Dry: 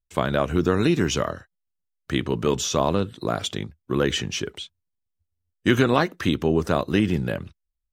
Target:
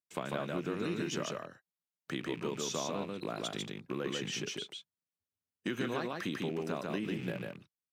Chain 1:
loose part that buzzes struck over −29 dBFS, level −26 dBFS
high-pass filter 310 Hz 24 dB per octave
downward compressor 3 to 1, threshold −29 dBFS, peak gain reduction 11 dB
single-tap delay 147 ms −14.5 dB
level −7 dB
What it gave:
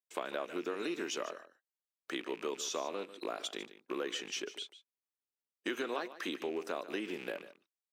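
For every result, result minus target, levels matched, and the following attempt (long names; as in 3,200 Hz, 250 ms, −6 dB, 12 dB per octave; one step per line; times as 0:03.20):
125 Hz band −18.0 dB; echo-to-direct −12 dB
loose part that buzzes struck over −29 dBFS, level −26 dBFS
high-pass filter 140 Hz 24 dB per octave
downward compressor 3 to 1, threshold −29 dBFS, peak gain reduction 11.5 dB
single-tap delay 147 ms −14.5 dB
level −7 dB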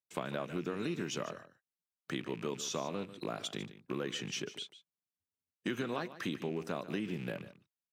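echo-to-direct −12 dB
loose part that buzzes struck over −29 dBFS, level −26 dBFS
high-pass filter 140 Hz 24 dB per octave
downward compressor 3 to 1, threshold −29 dBFS, peak gain reduction 11.5 dB
single-tap delay 147 ms −2.5 dB
level −7 dB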